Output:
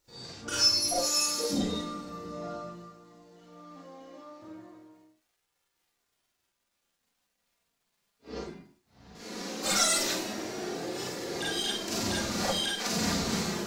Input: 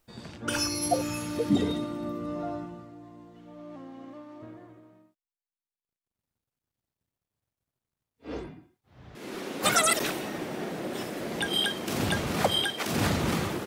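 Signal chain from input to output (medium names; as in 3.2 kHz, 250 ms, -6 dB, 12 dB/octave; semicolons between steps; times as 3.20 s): single-diode clipper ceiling -18 dBFS; 0.98–1.53 s: tone controls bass -12 dB, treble +11 dB; in parallel at -2.5 dB: peak limiter -22 dBFS, peak gain reduction 11 dB; on the sum: high-order bell 5.5 kHz +9.5 dB 1.1 oct; crackle 310 per s -54 dBFS; flange 0.18 Hz, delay 2.2 ms, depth 2.9 ms, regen -43%; Schroeder reverb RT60 0.3 s, combs from 32 ms, DRR -5 dB; trim -8.5 dB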